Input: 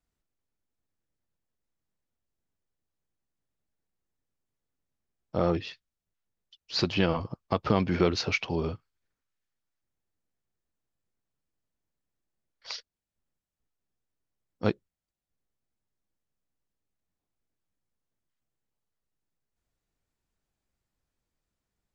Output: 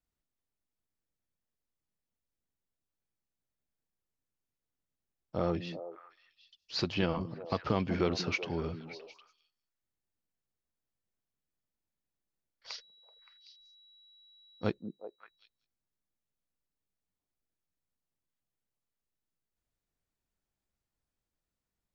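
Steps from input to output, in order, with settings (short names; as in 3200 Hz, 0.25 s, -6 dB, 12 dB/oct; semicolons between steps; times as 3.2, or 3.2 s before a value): 12.7–14.68 whine 3900 Hz -54 dBFS; delay with a stepping band-pass 0.19 s, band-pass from 220 Hz, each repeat 1.4 oct, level -6 dB; gain -5.5 dB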